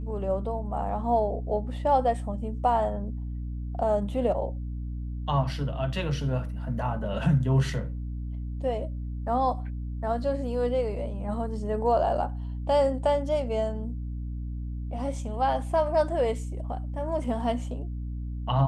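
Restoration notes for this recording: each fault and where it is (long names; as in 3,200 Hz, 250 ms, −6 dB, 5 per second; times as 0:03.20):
mains hum 60 Hz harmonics 5 −33 dBFS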